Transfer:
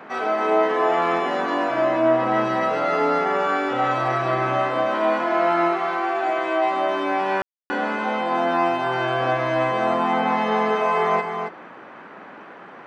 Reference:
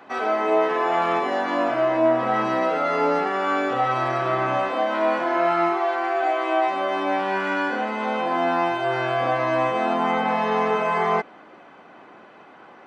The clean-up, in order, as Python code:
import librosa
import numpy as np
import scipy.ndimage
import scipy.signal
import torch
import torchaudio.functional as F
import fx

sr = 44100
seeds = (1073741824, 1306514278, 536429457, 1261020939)

y = fx.fix_ambience(x, sr, seeds[0], print_start_s=12.35, print_end_s=12.85, start_s=7.42, end_s=7.7)
y = fx.noise_reduce(y, sr, print_start_s=12.35, print_end_s=12.85, reduce_db=6.0)
y = fx.fix_echo_inverse(y, sr, delay_ms=273, level_db=-6.5)